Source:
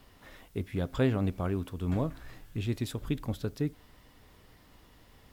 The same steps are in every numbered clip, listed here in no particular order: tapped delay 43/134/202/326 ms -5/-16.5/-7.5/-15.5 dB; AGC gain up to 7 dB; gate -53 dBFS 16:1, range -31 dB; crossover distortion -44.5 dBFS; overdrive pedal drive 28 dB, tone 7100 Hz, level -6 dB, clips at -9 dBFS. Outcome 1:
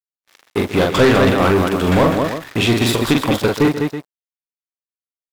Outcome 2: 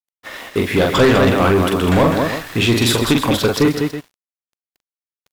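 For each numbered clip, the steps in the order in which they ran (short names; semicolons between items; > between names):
crossover distortion > tapped delay > overdrive pedal > AGC > gate; gate > tapped delay > overdrive pedal > crossover distortion > AGC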